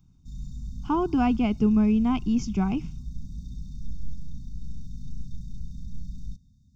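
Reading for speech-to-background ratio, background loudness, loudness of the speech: 16.5 dB, -41.0 LUFS, -24.5 LUFS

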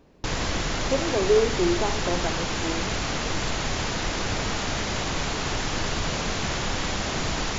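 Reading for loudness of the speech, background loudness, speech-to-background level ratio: -26.5 LUFS, -27.5 LUFS, 1.0 dB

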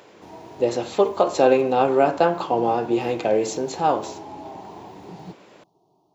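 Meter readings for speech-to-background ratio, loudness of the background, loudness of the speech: 20.0 dB, -41.0 LUFS, -21.0 LUFS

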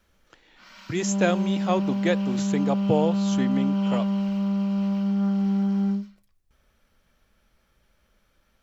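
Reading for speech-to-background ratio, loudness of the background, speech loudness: -3.0 dB, -25.0 LUFS, -28.0 LUFS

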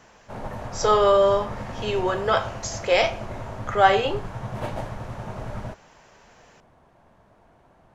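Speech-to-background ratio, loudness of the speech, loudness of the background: 13.0 dB, -22.0 LUFS, -35.0 LUFS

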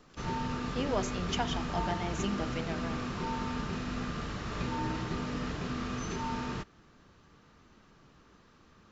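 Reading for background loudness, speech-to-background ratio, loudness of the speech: -36.0 LUFS, -1.0 dB, -37.0 LUFS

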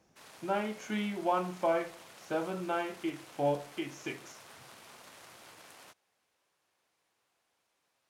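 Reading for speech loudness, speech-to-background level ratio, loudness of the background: -34.5 LUFS, 18.0 dB, -52.5 LUFS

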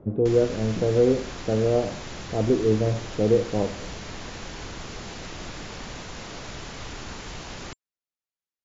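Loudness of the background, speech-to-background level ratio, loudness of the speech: -37.5 LUFS, 13.5 dB, -24.0 LUFS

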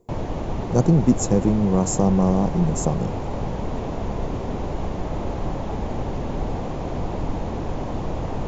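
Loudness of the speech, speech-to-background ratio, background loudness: -21.0 LUFS, 8.0 dB, -29.0 LUFS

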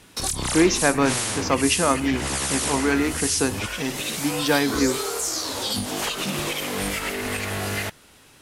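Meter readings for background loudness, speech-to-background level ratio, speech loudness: -25.5 LUFS, 1.5 dB, -24.0 LUFS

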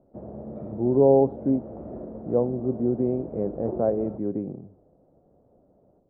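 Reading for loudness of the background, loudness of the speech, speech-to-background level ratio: -39.0 LUFS, -24.5 LUFS, 14.5 dB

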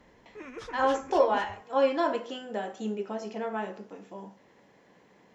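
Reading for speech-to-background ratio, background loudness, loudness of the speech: 14.0 dB, -43.5 LUFS, -29.5 LUFS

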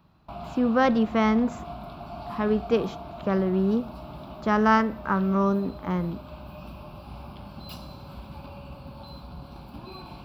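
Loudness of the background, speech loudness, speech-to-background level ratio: -41.0 LUFS, -25.0 LUFS, 16.0 dB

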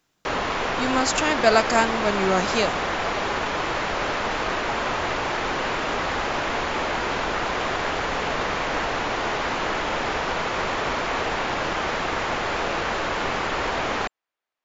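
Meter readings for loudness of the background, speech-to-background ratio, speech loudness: -25.0 LUFS, 2.5 dB, -22.5 LUFS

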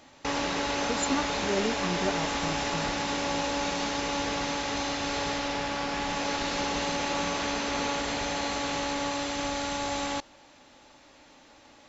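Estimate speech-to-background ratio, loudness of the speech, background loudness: -4.5 dB, -34.0 LUFS, -29.5 LUFS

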